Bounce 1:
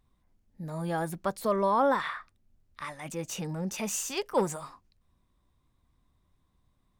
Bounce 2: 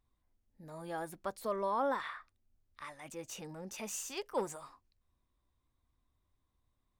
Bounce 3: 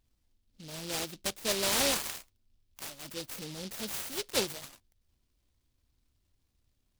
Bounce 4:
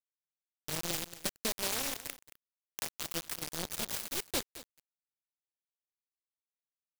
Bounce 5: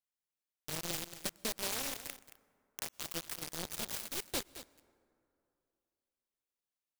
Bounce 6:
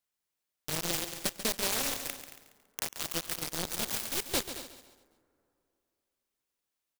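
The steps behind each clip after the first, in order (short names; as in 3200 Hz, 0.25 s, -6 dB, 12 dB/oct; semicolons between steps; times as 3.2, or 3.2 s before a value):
bell 170 Hz -9 dB 0.54 oct; gain -8 dB
noise-modulated delay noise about 3900 Hz, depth 0.28 ms; gain +4.5 dB
compressor 10:1, threshold -41 dBFS, peak gain reduction 16.5 dB; companded quantiser 2-bit; echo 0.224 s -16.5 dB
soft clip -26 dBFS, distortion -24 dB; on a send at -23 dB: reverb RT60 2.8 s, pre-delay 0.103 s
feedback echo 0.139 s, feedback 41%, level -11 dB; gain +6 dB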